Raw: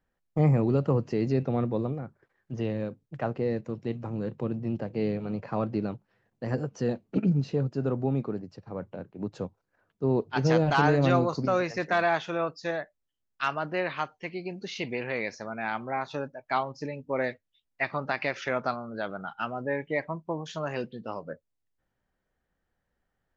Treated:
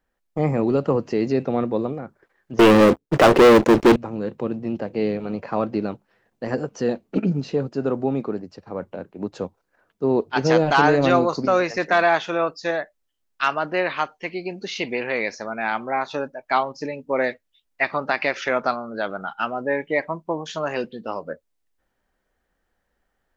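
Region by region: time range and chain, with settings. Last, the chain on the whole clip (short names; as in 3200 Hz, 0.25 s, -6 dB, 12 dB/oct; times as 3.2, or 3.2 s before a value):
2.59–3.96 bell 360 Hz +7.5 dB 0.88 oct + sample leveller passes 5
whole clip: bell 120 Hz -11 dB 1.1 oct; AGC gain up to 3.5 dB; gain +4 dB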